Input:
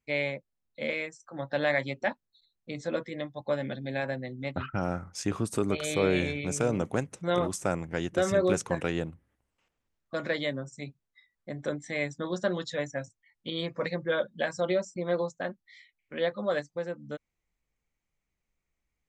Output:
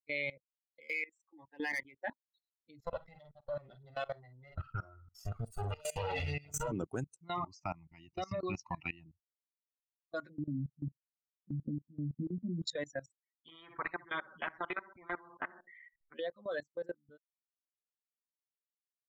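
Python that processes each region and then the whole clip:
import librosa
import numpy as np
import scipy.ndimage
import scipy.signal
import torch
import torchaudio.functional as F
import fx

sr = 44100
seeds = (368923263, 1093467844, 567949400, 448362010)

y = fx.chain(x, sr, fx.lowpass(hz=11000.0, slope=12),
    fx.fixed_phaser(hz=930.0, stages=8),
    fx.overload_stage(gain_db=27.5), at=(0.8, 2.04))
y = fx.chain(y, sr, fx.lower_of_two(delay_ms=1.5),
    fx.lowpass(hz=3900.0, slope=6),
    fx.doubler(ms=48.0, db=-6), at=(2.79, 6.72))
y = fx.chain(y, sr, fx.lowpass(hz=4600.0, slope=24),
    fx.high_shelf(hz=3000.0, db=8.5),
    fx.fixed_phaser(hz=2300.0, stages=8), at=(7.24, 9.06))
y = fx.chain(y, sr, fx.lowpass_res(hz=220.0, q=2.7),
    fx.low_shelf(hz=82.0, db=8.0), at=(10.29, 12.63))
y = fx.chain(y, sr, fx.lowpass(hz=1600.0, slope=24),
    fx.echo_feedback(ms=63, feedback_pct=27, wet_db=-11.5),
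    fx.spectral_comp(ratio=4.0), at=(13.48, 16.14))
y = fx.bin_expand(y, sr, power=2.0)
y = fx.high_shelf(y, sr, hz=8400.0, db=3.5)
y = fx.level_steps(y, sr, step_db=21)
y = y * librosa.db_to_amplitude(6.0)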